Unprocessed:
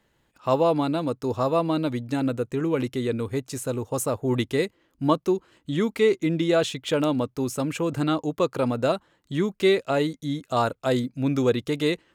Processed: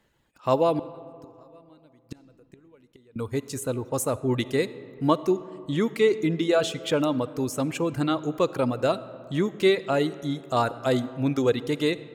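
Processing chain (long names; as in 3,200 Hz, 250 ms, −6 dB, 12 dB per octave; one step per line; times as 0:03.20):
reverb reduction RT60 0.69 s
0:00.79–0:03.16: gate with flip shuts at −23 dBFS, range −30 dB
comb and all-pass reverb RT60 2.6 s, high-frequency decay 0.45×, pre-delay 15 ms, DRR 15.5 dB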